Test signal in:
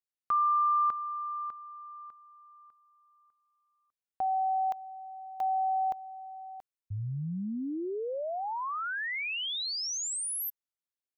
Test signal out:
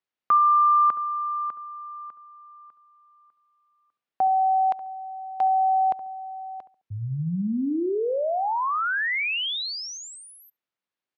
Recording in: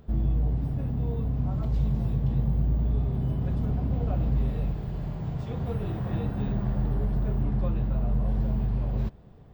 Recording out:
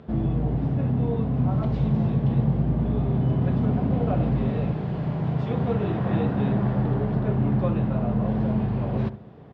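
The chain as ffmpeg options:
-filter_complex "[0:a]highpass=140,lowpass=3.3k,asplit=2[a][b];[b]adelay=70,lowpass=f=1.1k:p=1,volume=-12.5dB,asplit=2[c][d];[d]adelay=70,lowpass=f=1.1k:p=1,volume=0.33,asplit=2[e][f];[f]adelay=70,lowpass=f=1.1k:p=1,volume=0.33[g];[a][c][e][g]amix=inputs=4:normalize=0,volume=9dB"

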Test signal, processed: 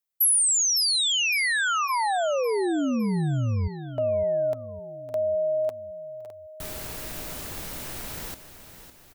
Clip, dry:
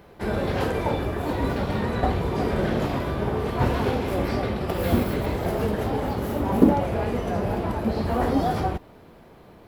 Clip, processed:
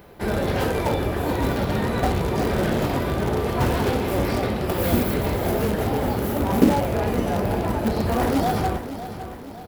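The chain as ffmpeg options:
-filter_complex "[0:a]highshelf=f=11k:g=10.5,bandreject=f=1.1k:w=26,asplit=2[a][b];[b]aeval=exprs='(mod(7.08*val(0)+1,2)-1)/7.08':c=same,volume=-10dB[c];[a][c]amix=inputs=2:normalize=0,aecho=1:1:558|1116|1674|2232|2790:0.251|0.128|0.0653|0.0333|0.017"

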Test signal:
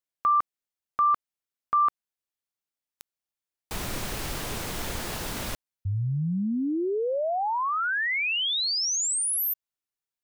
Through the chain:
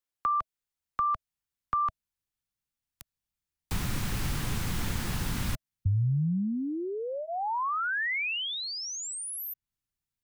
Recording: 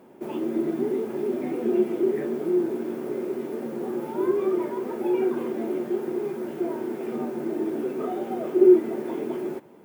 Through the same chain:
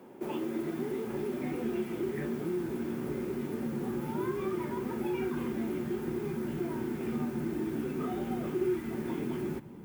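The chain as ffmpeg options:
-filter_complex "[0:a]asubboost=boost=8:cutoff=170,acrossover=split=110|960|2200[a][b][c][d];[a]acompressor=threshold=-33dB:ratio=4[e];[b]acompressor=threshold=-33dB:ratio=4[f];[c]acompressor=threshold=-33dB:ratio=4[g];[d]acompressor=threshold=-38dB:ratio=4[h];[e][f][g][h]amix=inputs=4:normalize=0,bandreject=f=640:w=12"

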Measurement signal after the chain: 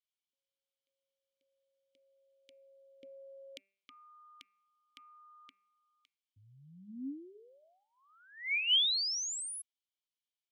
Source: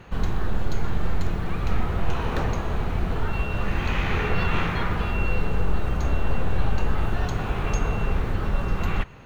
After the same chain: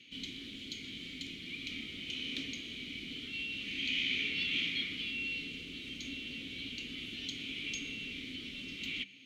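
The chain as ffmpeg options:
-filter_complex "[0:a]asplit=3[a][b][c];[a]bandpass=f=270:t=q:w=8,volume=0dB[d];[b]bandpass=f=2.29k:t=q:w=8,volume=-6dB[e];[c]bandpass=f=3.01k:t=q:w=8,volume=-9dB[f];[d][e][f]amix=inputs=3:normalize=0,bandreject=f=195.9:t=h:w=4,bandreject=f=391.8:t=h:w=4,bandreject=f=587.7:t=h:w=4,bandreject=f=783.6:t=h:w=4,bandreject=f=979.5:t=h:w=4,bandreject=f=1.1754k:t=h:w=4,bandreject=f=1.3713k:t=h:w=4,bandreject=f=1.5672k:t=h:w=4,bandreject=f=1.7631k:t=h:w=4,bandreject=f=1.959k:t=h:w=4,bandreject=f=2.1549k:t=h:w=4,bandreject=f=2.3508k:t=h:w=4,bandreject=f=2.5467k:t=h:w=4,bandreject=f=2.7426k:t=h:w=4,aexciter=amount=12.2:drive=6.5:freq=2.5k,volume=-5dB"

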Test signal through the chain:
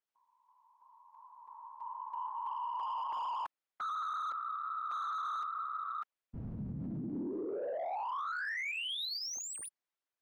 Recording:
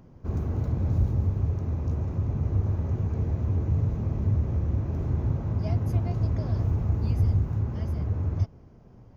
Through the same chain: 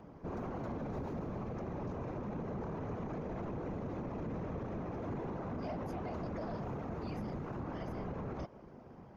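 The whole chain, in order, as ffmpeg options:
-filter_complex "[0:a]afftfilt=real='hypot(re,im)*cos(2*PI*random(0))':imag='hypot(re,im)*sin(2*PI*random(1))':win_size=512:overlap=0.75,acrossover=split=260[a][b];[a]acompressor=threshold=-39dB:ratio=3[c];[c][b]amix=inputs=2:normalize=0,asplit=2[d][e];[e]highpass=f=720:p=1,volume=19dB,asoftclip=type=tanh:threshold=-22dB[f];[d][f]amix=inputs=2:normalize=0,lowpass=f=1.4k:p=1,volume=-6dB,alimiter=level_in=10dB:limit=-24dB:level=0:latency=1:release=36,volume=-10dB,volume=1dB"

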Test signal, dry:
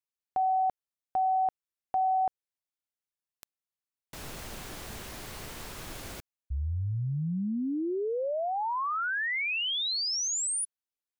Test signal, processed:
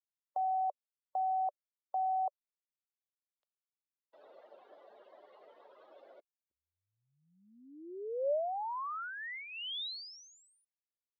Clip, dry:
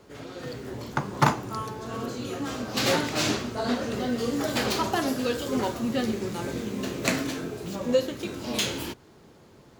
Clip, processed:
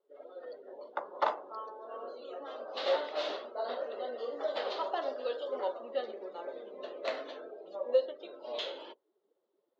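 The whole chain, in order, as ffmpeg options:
-af "afftdn=nr=22:nf=-41,highpass=f=450:w=0.5412,highpass=f=450:w=1.3066,equalizer=f=580:t=q:w=4:g=9,equalizer=f=1.6k:t=q:w=4:g=-5,equalizer=f=2.4k:t=q:w=4:g=-10,equalizer=f=3.7k:t=q:w=4:g=3,lowpass=f=3.7k:w=0.5412,lowpass=f=3.7k:w=1.3066,volume=-7.5dB"

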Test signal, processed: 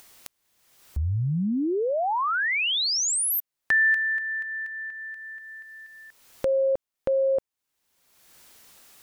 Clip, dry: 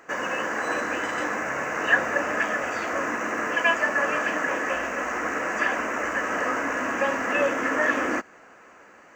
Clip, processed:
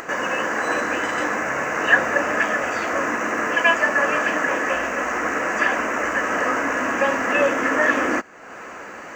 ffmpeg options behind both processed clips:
-af "acompressor=mode=upward:threshold=-30dB:ratio=2.5,volume=4.5dB"

